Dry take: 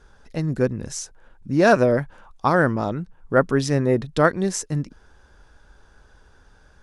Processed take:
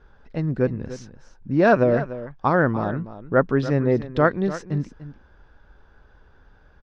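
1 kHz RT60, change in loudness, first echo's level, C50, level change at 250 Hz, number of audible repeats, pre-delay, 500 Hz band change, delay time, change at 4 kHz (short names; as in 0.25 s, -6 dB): none, -0.5 dB, -14.0 dB, none, 0.0 dB, 1, none, -0.5 dB, 0.294 s, -8.5 dB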